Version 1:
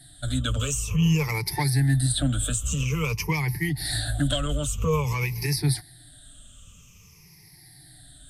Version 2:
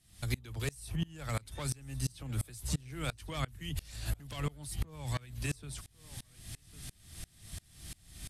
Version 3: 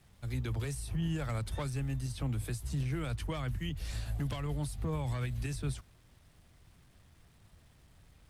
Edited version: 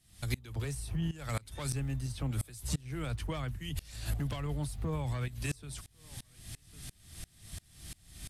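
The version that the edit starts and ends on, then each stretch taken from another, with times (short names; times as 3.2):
2
0.56–1.11 from 3
1.73–2.31 from 3
2.95–3.55 from 3, crossfade 0.24 s
4.14–5.28 from 3
not used: 1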